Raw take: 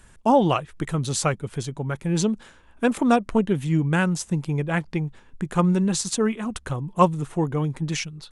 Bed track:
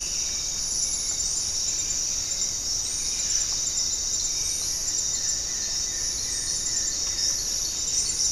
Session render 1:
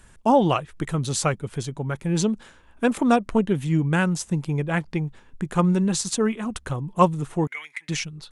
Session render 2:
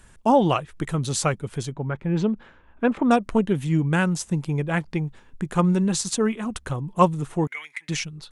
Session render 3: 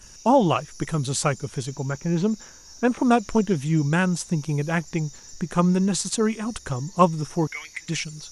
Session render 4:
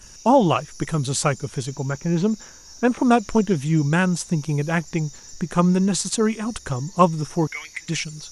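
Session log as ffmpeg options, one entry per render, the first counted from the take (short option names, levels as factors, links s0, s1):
-filter_complex "[0:a]asettb=1/sr,asplit=3[s0][s1][s2];[s0]atrim=end=7.474[s3];[s1]atrim=start=7.47:end=7.89,asetpts=PTS-STARTPTS,afade=t=in:d=0.004:c=qsin,afade=t=out:st=0.416:d=0.004:c=qsin,highpass=f=2100:t=q:w=11[s4];[s2]atrim=start=7.886[s5];[s3][s4]acrossfade=d=0.004:c1=hsin:c2=qsin[s6];[s6][s5]acrossfade=d=0.004:c1=qsin:c2=hsin"
-filter_complex "[0:a]asettb=1/sr,asplit=3[s0][s1][s2];[s0]atrim=end=1.734[s3];[s1]atrim=start=1.73:end=3.11,asetpts=PTS-STARTPTS,afade=t=in:d=0.004:c=qsin,afade=t=out:st=1.376:d=0.004:c=qsin,lowpass=2400[s4];[s2]atrim=start=3.106[s5];[s3][s4]acrossfade=d=0.004:c1=hsin:c2=qsin[s6];[s6][s5]acrossfade=d=0.004:c1=qsin:c2=hsin"
-filter_complex "[1:a]volume=0.106[s0];[0:a][s0]amix=inputs=2:normalize=0"
-af "volume=1.26,alimiter=limit=0.708:level=0:latency=1"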